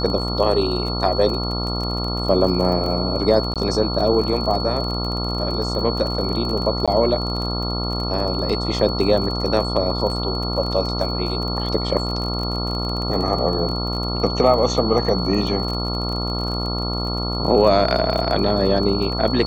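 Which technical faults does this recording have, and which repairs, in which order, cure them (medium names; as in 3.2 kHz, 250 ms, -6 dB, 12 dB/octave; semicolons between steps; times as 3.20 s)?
buzz 60 Hz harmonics 23 -25 dBFS
crackle 32 per s -26 dBFS
whine 4.4 kHz -27 dBFS
3.54–3.56 s: dropout 17 ms
6.86–6.88 s: dropout 16 ms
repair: de-click; band-stop 4.4 kHz, Q 30; de-hum 60 Hz, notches 23; interpolate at 3.54 s, 17 ms; interpolate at 6.86 s, 16 ms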